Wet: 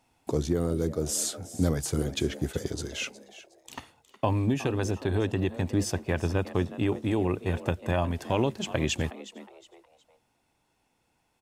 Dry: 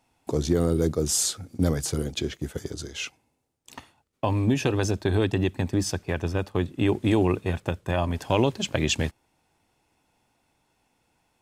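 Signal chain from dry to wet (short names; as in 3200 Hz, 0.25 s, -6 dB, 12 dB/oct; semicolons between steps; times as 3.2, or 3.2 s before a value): dynamic EQ 4500 Hz, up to -4 dB, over -42 dBFS, Q 1; vocal rider within 4 dB 0.5 s; frequency-shifting echo 0.364 s, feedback 33%, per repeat +130 Hz, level -16 dB; gain -2.5 dB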